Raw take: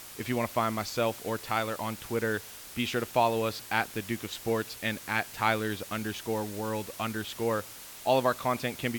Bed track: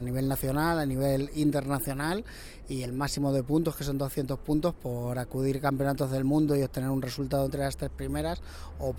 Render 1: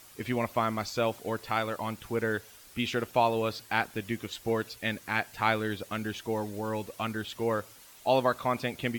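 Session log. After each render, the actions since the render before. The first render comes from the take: noise reduction 9 dB, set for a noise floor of -46 dBFS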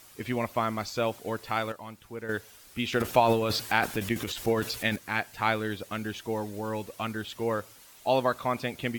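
1.72–2.29 s: gain -8.5 dB; 2.89–4.96 s: transient shaper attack +5 dB, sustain +12 dB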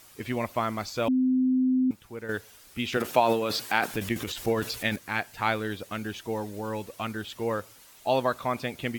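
1.08–1.91 s: bleep 257 Hz -20 dBFS; 2.97–3.91 s: high-pass 170 Hz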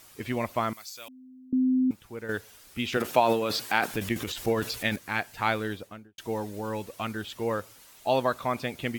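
0.73–1.53 s: pre-emphasis filter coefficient 0.97; 5.64–6.18 s: studio fade out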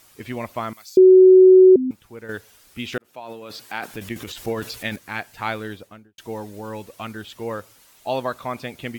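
0.97–1.76 s: bleep 373 Hz -6 dBFS; 2.98–4.37 s: fade in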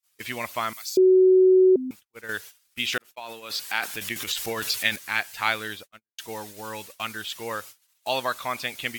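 tilt shelf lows -9 dB; gate -41 dBFS, range -43 dB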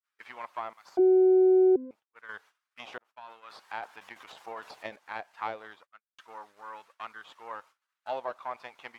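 partial rectifier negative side -12 dB; auto-wah 350–1400 Hz, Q 2.2, down, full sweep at -18.5 dBFS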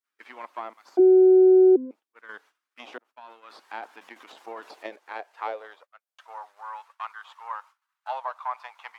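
high-pass sweep 280 Hz -> 950 Hz, 4.42–7.02 s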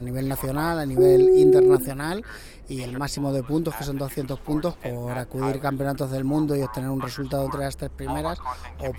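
add bed track +2 dB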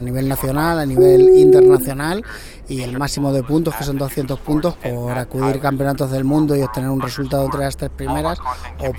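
trim +7.5 dB; peak limiter -2 dBFS, peak gain reduction 2.5 dB

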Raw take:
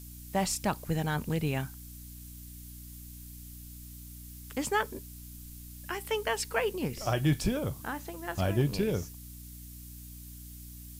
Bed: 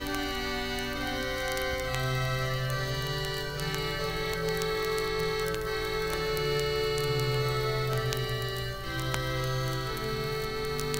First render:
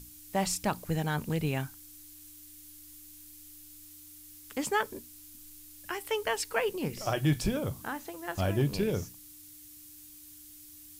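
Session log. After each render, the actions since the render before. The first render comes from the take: hum notches 60/120/180/240 Hz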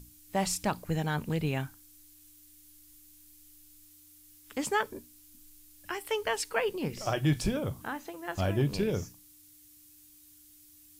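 noise print and reduce 6 dB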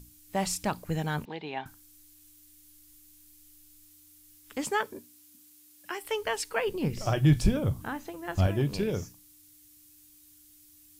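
1.25–1.66 s: cabinet simulation 400–3900 Hz, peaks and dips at 540 Hz -7 dB, 840 Hz +10 dB, 1.3 kHz -8 dB, 2.6 kHz -4 dB, 3.7 kHz +4 dB; 4.68–6.02 s: high-pass 98 Hz -> 210 Hz; 6.67–8.47 s: bass shelf 170 Hz +11.5 dB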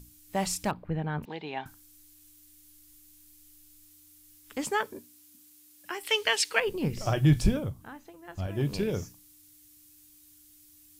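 0.71–1.23 s: distance through air 500 m; 6.03–6.60 s: frequency weighting D; 7.53–8.66 s: dip -9.5 dB, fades 0.19 s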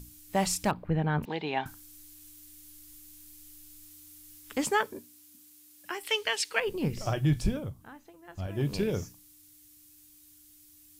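gain riding within 5 dB 0.5 s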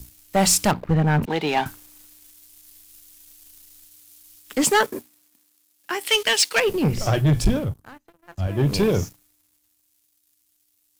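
waveshaping leveller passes 3; three bands expanded up and down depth 40%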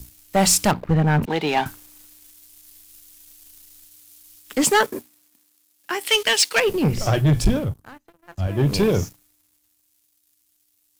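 trim +1 dB

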